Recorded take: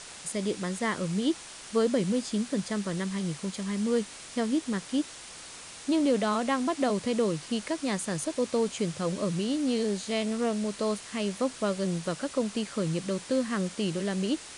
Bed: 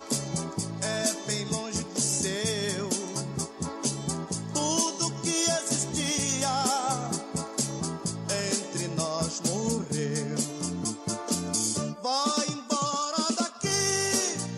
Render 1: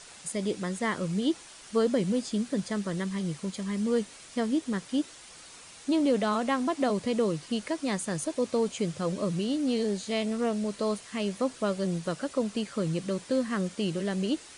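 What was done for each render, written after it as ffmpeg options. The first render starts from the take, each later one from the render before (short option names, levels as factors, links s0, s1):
-af "afftdn=nr=6:nf=-45"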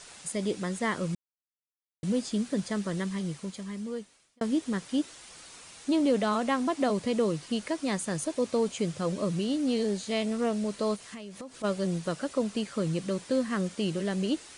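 -filter_complex "[0:a]asplit=3[s0][s1][s2];[s0]afade=t=out:st=10.95:d=0.02[s3];[s1]acompressor=threshold=0.0126:ratio=8:attack=3.2:release=140:knee=1:detection=peak,afade=t=in:st=10.95:d=0.02,afade=t=out:st=11.63:d=0.02[s4];[s2]afade=t=in:st=11.63:d=0.02[s5];[s3][s4][s5]amix=inputs=3:normalize=0,asplit=4[s6][s7][s8][s9];[s6]atrim=end=1.15,asetpts=PTS-STARTPTS,afade=t=out:st=1.146:d=0.004:c=hsin[s10];[s7]atrim=start=1.15:end=2.03,asetpts=PTS-STARTPTS,volume=0[s11];[s8]atrim=start=2.03:end=4.41,asetpts=PTS-STARTPTS,afade=t=in:d=0.004:c=hsin,afade=t=out:st=1.02:d=1.36[s12];[s9]atrim=start=4.41,asetpts=PTS-STARTPTS,afade=t=in:d=0.004:c=hsin[s13];[s10][s11][s12][s13]concat=n=4:v=0:a=1"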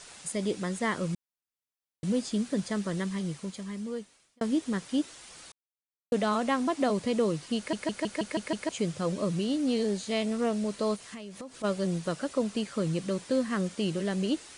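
-filter_complex "[0:a]asplit=10[s0][s1][s2][s3][s4][s5][s6][s7][s8][s9];[s0]atrim=end=5.52,asetpts=PTS-STARTPTS,afade=t=out:st=5.516:d=0.004:c=hsin[s10];[s1]atrim=start=5.52:end=6.12,asetpts=PTS-STARTPTS,volume=0[s11];[s2]atrim=start=6.12:end=7.732,asetpts=PTS-STARTPTS,afade=t=in:d=0.004:c=hsin[s12];[s3]atrim=start=7.568:end=7.732[s13];[s4]atrim=start=7.568:end=7.732[s14];[s5]atrim=start=7.568:end=7.732[s15];[s6]atrim=start=7.568:end=7.732[s16];[s7]atrim=start=7.568:end=7.732[s17];[s8]atrim=start=7.568:end=7.732[s18];[s9]atrim=start=8.688[s19];[s10][s11][s12]concat=n=3:v=0:a=1[s20];[s20][s13]acrossfade=d=0.004:c1=hsin:c2=hsin[s21];[s21][s14]acrossfade=d=0.004:c1=hsin:c2=hsin[s22];[s22][s15]acrossfade=d=0.004:c1=hsin:c2=hsin[s23];[s23][s16]acrossfade=d=0.004:c1=hsin:c2=hsin[s24];[s24][s17]acrossfade=d=0.004:c1=hsin:c2=hsin[s25];[s25][s18]acrossfade=d=0.004:c1=hsin:c2=hsin[s26];[s26][s19]acrossfade=d=0.004:c1=hsin:c2=hsin"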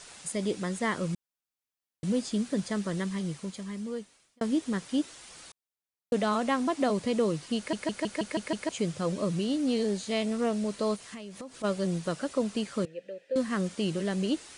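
-filter_complex "[0:a]asettb=1/sr,asplit=3[s0][s1][s2];[s0]atrim=end=12.854[s3];[s1]atrim=start=12.85:end=13.36,asetpts=PTS-STARTPTS,afade=t=in:d=0.004:c=qsin,afade=t=out:st=0.506:d=0.004:c=qsin,asplit=3[s4][s5][s6];[s4]bandpass=f=530:t=q:w=8,volume=1[s7];[s5]bandpass=f=1840:t=q:w=8,volume=0.501[s8];[s6]bandpass=f=2480:t=q:w=8,volume=0.355[s9];[s7][s8][s9]amix=inputs=3:normalize=0[s10];[s2]atrim=start=13.356[s11];[s3][s10]acrossfade=d=0.004:c1=hsin:c2=qsin[s12];[s12][s11]acrossfade=d=0.004:c1=qsin:c2=hsin"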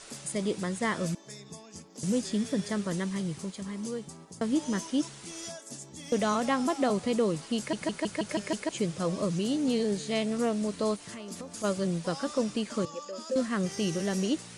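-filter_complex "[1:a]volume=0.168[s0];[0:a][s0]amix=inputs=2:normalize=0"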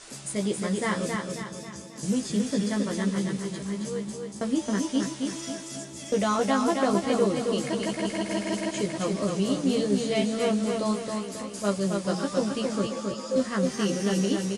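-filter_complex "[0:a]asplit=2[s0][s1];[s1]adelay=15,volume=0.708[s2];[s0][s2]amix=inputs=2:normalize=0,aecho=1:1:270|540|810|1080|1350|1620:0.631|0.29|0.134|0.0614|0.0283|0.013"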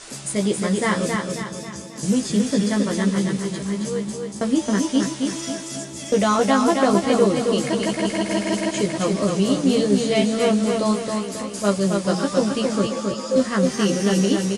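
-af "volume=2.11"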